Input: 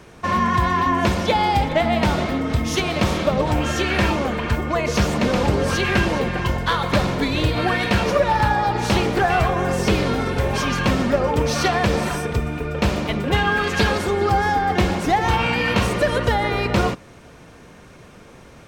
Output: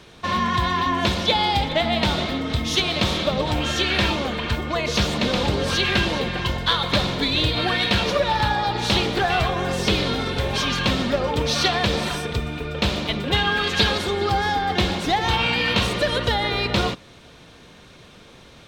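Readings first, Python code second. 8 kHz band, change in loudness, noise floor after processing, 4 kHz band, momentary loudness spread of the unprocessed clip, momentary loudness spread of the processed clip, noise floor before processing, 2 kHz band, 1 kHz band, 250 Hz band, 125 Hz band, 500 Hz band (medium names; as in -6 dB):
-1.0 dB, -1.5 dB, -47 dBFS, +6.5 dB, 4 LU, 5 LU, -45 dBFS, -1.0 dB, -3.0 dB, -3.5 dB, -3.5 dB, -3.5 dB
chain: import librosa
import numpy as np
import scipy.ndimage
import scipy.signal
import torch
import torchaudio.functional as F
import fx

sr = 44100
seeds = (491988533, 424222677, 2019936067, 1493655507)

y = fx.peak_eq(x, sr, hz=3700.0, db=12.5, octaves=0.8)
y = y * librosa.db_to_amplitude(-3.5)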